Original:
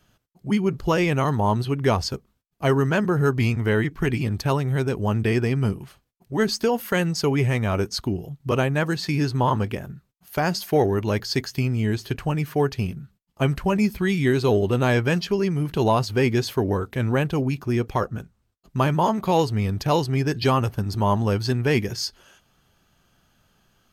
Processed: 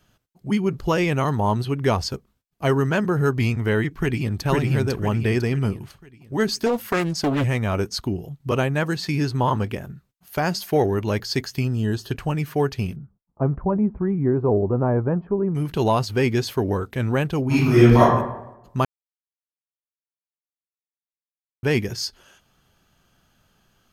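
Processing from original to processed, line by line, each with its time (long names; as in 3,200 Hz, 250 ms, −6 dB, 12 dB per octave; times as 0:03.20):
0:03.91–0:04.45: delay throw 500 ms, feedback 40%, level −1 dB
0:06.66–0:07.44: highs frequency-modulated by the lows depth 0.74 ms
0:11.64–0:12.12: Butterworth band-reject 2,200 Hz, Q 3
0:12.96–0:15.55: low-pass filter 1,100 Hz 24 dB per octave
0:17.46–0:18.00: thrown reverb, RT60 0.89 s, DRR −11 dB
0:18.85–0:21.63: silence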